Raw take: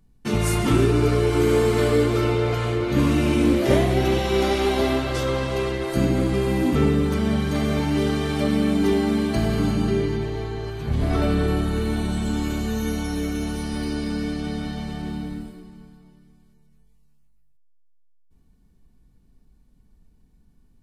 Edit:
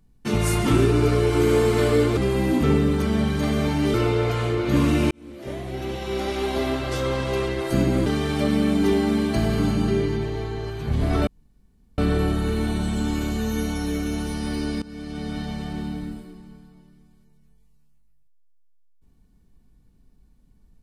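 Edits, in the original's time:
3.34–5.54 fade in
6.29–8.06 move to 2.17
11.27 insert room tone 0.71 s
14.11–14.69 fade in, from -19.5 dB

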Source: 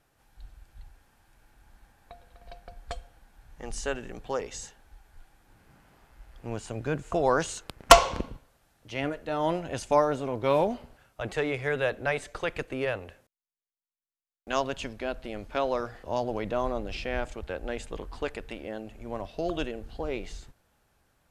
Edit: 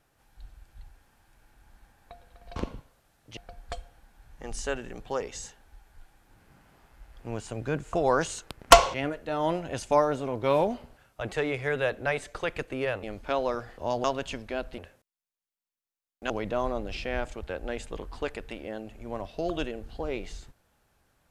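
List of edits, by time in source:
8.13–8.94 move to 2.56
13.03–14.55 swap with 15.29–16.3

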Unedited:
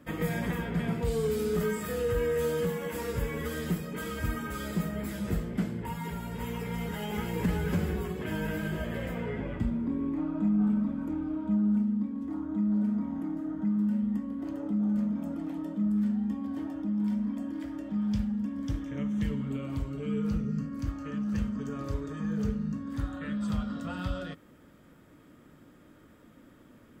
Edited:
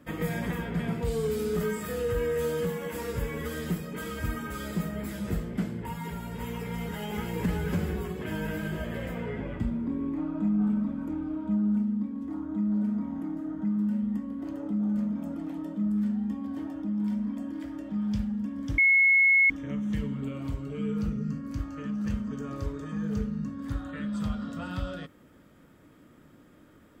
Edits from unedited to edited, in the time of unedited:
18.78 add tone 2180 Hz -17 dBFS 0.72 s

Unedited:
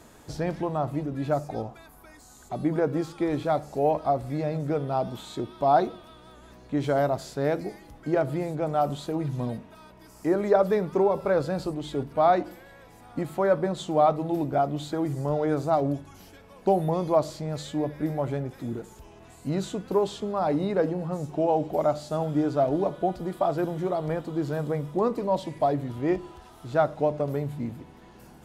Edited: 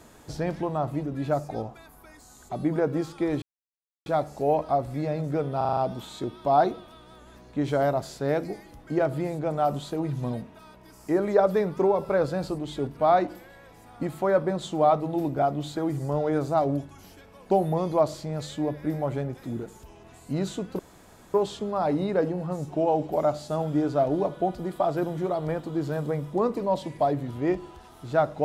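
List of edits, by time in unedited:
3.42 insert silence 0.64 s
4.93 stutter 0.04 s, 6 plays
19.95 insert room tone 0.55 s

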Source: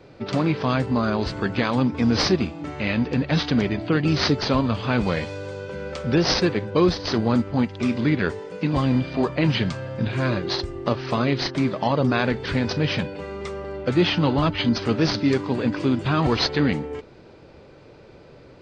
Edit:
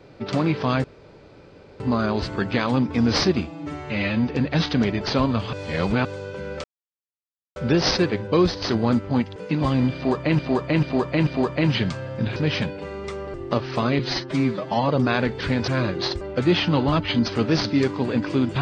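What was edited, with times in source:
0.84 insert room tone 0.96 s
2.51–3.05 stretch 1.5×
3.78–4.36 cut
4.88–5.4 reverse
5.99 insert silence 0.92 s
7.79–8.48 cut
9.07–9.51 loop, 4 plays
10.16–10.69 swap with 12.73–13.71
11.34–11.94 stretch 1.5×

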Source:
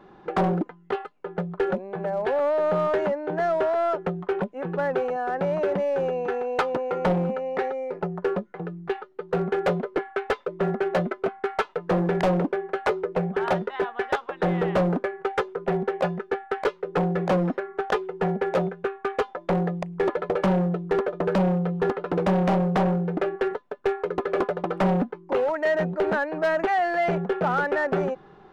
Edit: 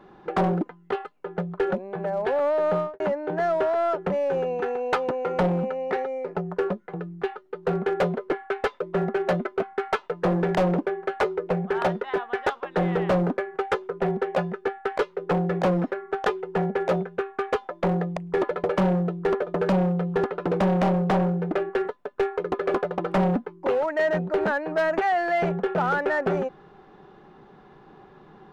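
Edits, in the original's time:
2.73–3 studio fade out
4.1–5.76 cut

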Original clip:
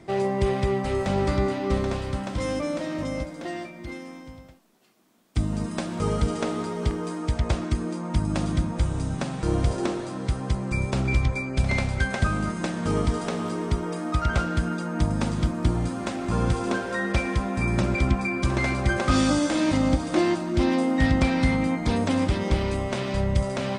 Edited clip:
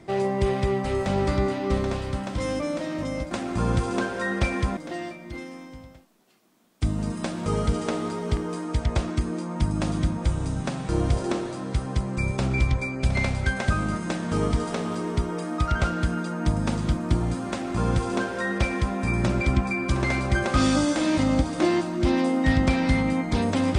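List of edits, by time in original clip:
16.04–17.5 copy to 3.31

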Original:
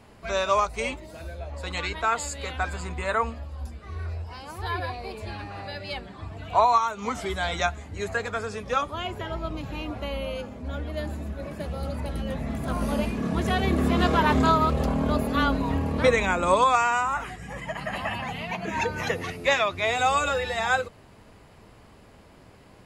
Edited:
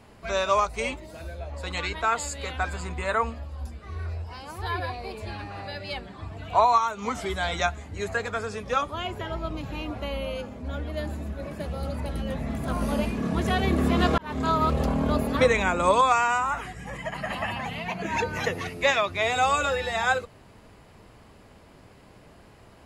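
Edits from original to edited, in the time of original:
14.18–14.69 fade in
15.37–16 cut

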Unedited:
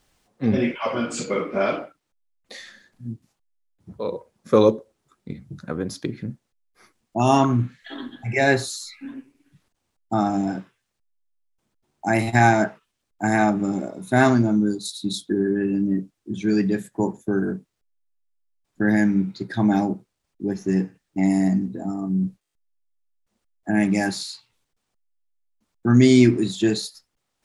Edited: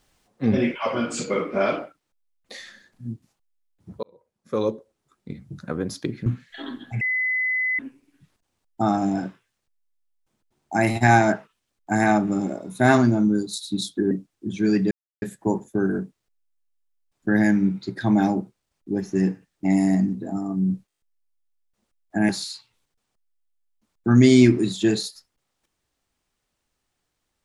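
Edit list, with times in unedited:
4.03–5.59 fade in
6.26–7.58 cut
8.33–9.11 bleep 2020 Hz -20.5 dBFS
15.43–15.95 cut
16.75 insert silence 0.31 s
23.82–24.08 cut

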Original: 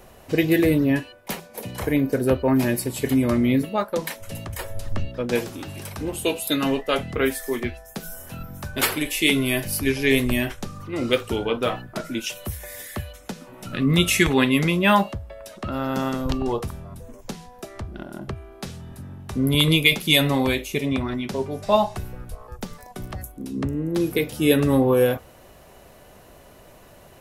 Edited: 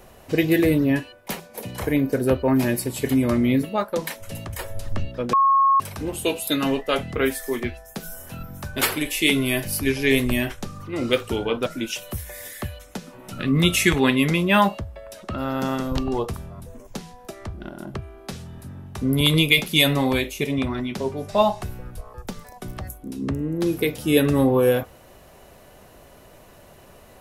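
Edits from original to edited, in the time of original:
5.33–5.8 bleep 1090 Hz -13.5 dBFS
11.66–12 cut

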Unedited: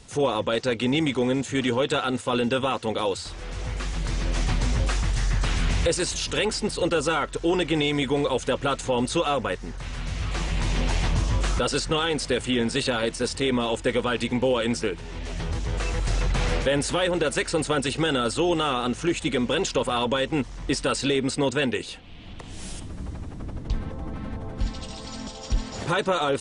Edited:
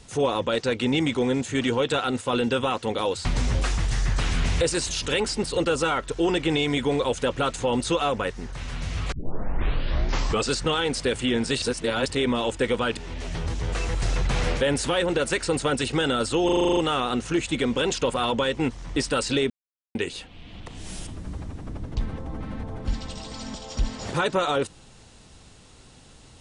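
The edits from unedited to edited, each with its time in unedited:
3.25–4.5 cut
10.37 tape start 1.41 s
12.87–13.31 reverse
14.22–15.02 cut
18.5 stutter 0.04 s, 9 plays
21.23–21.68 mute

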